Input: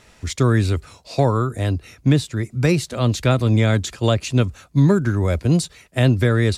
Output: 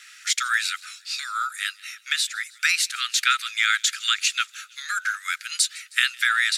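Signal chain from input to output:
Butterworth high-pass 1,300 Hz 96 dB per octave
on a send: delay with a high-pass on its return 158 ms, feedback 58%, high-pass 2,500 Hz, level −22 dB
on the sum: level +7.5 dB

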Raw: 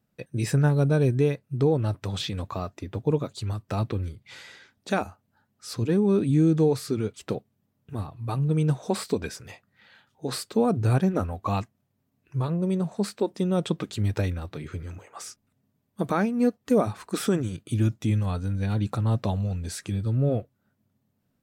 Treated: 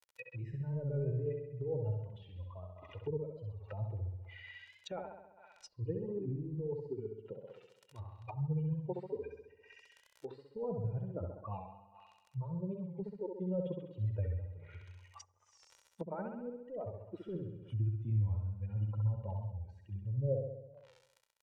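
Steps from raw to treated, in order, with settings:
spectral dynamics exaggerated over time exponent 2
high-pass filter 100 Hz 12 dB per octave
parametric band 3,000 Hz +13 dB 0.61 octaves
surface crackle 17 per second −46 dBFS
compressor whose output falls as the input rises −29 dBFS, ratio −1
low shelf with overshoot 460 Hz −6.5 dB, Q 1.5
comb filter 2.1 ms, depth 63%
flutter between parallel walls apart 11.3 metres, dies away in 0.91 s
treble cut that deepens with the level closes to 370 Hz, closed at −38 dBFS
wow of a warped record 45 rpm, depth 100 cents

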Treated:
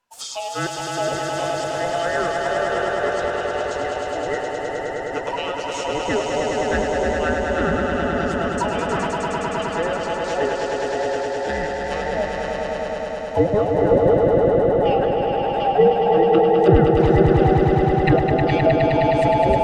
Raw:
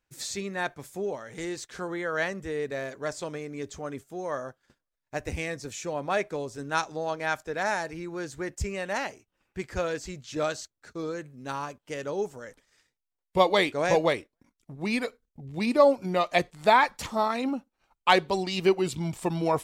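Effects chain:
frequency inversion band by band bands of 1,000 Hz
treble cut that deepens with the level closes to 680 Hz, closed at −21.5 dBFS
echo that builds up and dies away 104 ms, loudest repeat 5, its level −5 dB
level +5 dB

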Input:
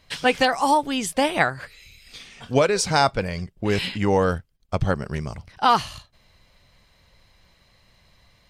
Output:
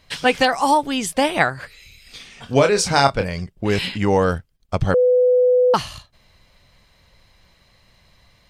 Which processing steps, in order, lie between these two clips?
0:02.46–0:03.24: double-tracking delay 29 ms −7 dB
0:04.94–0:05.74: beep over 499 Hz −14 dBFS
level +2.5 dB

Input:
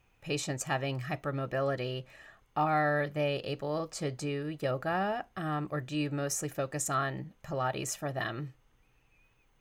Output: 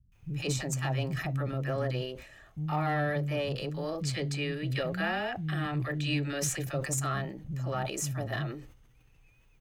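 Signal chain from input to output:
bass and treble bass +8 dB, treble +3 dB
three-band delay without the direct sound lows, highs, mids 120/150 ms, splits 230/1,000 Hz
tube saturation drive 20 dB, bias 0.25
0:04.00–0:06.64: flat-topped bell 2,700 Hz +8 dB
level that may fall only so fast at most 86 dB per second

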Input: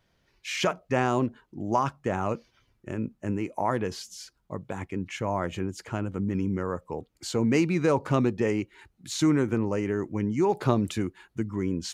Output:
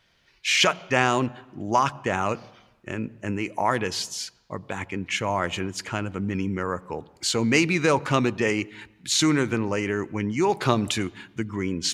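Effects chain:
parametric band 3,000 Hz +11 dB 2.8 octaves
on a send at −23 dB: convolution reverb RT60 1.1 s, pre-delay 66 ms
on the sum: dynamic equaliser 9,900 Hz, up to +6 dB, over −46 dBFS, Q 0.74

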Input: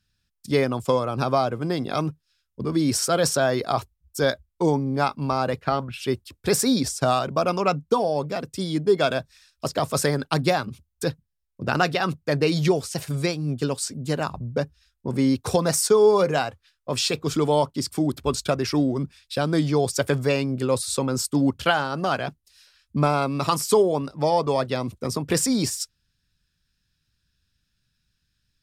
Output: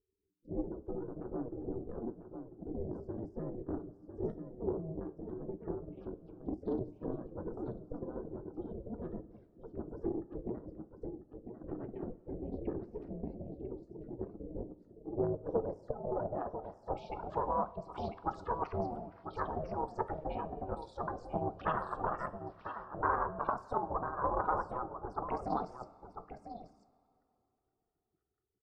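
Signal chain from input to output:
spectral envelope exaggerated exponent 3
on a send: single-tap delay 997 ms −12 dB
on the sum: downward compressor 1.5 to 1, threshold −33 dBFS, peak gain reduction 7.5 dB
gate on every frequency bin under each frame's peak −15 dB weak
ring modulation 240 Hz
low-pass filter sweep 350 Hz → 1,100 Hz, 0:14.54–0:18.07
coupled-rooms reverb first 0.34 s, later 3.1 s, from −17 dB, DRR 10.5 dB
highs frequency-modulated by the lows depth 0.24 ms
level +7.5 dB

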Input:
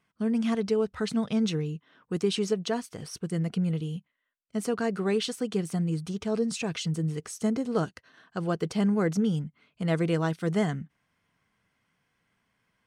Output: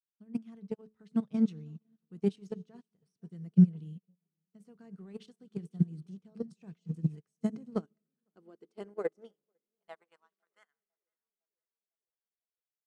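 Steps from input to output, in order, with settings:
one-sided soft clipper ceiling −15 dBFS
low-shelf EQ 280 Hz +6 dB
output level in coarse steps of 11 dB
hum removal 107.9 Hz, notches 4
high-pass filter sweep 160 Hz → 1,700 Hz, 0:07.45–0:10.96
tape delay 504 ms, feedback 65%, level −18 dB, low-pass 2,400 Hz
on a send at −20.5 dB: convolution reverb RT60 2.6 s, pre-delay 3 ms
on the sum: expander for the loud parts 2.5 to 1, over −44 dBFS

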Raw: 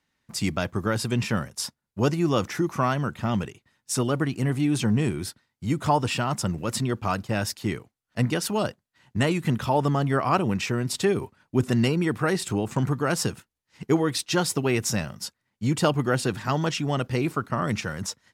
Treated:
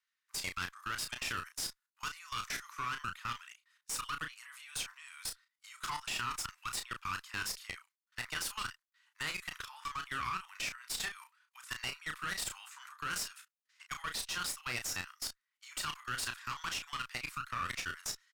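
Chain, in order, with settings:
Butterworth high-pass 1,100 Hz 48 dB per octave
output level in coarse steps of 18 dB
asymmetric clip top −41.5 dBFS
double-tracking delay 33 ms −6.5 dB
level +1 dB

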